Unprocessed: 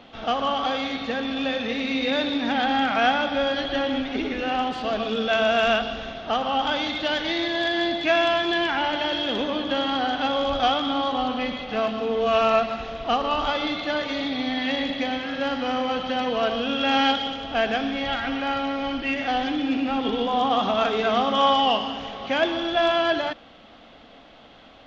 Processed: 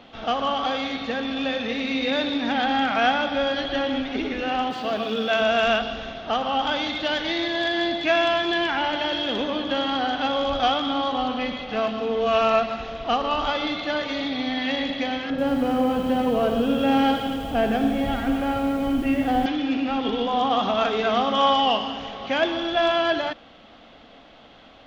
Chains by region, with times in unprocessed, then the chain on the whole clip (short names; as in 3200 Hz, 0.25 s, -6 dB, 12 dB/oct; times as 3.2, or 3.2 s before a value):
4.7–5.41 HPF 100 Hz + requantised 10-bit, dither none
15.3–19.46 tilt shelf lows +8.5 dB, about 760 Hz + lo-fi delay 82 ms, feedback 80%, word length 7-bit, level -10 dB
whole clip: dry